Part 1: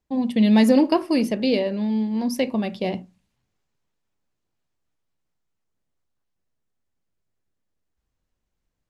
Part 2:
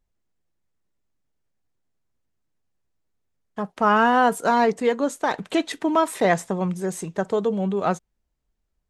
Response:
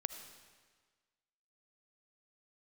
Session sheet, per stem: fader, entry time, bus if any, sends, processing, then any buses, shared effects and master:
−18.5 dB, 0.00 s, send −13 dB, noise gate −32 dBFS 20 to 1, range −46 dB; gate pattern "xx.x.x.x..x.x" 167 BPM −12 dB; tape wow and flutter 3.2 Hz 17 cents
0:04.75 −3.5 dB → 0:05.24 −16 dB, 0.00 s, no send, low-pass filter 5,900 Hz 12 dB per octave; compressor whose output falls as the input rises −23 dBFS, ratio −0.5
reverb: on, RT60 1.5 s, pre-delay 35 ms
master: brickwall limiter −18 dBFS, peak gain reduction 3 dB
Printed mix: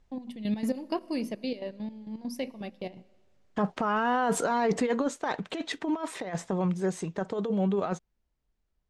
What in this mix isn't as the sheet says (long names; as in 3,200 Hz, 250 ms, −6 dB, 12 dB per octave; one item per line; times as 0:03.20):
stem 1 −18.5 dB → −12.5 dB
stem 2 −3.5 dB → +7.0 dB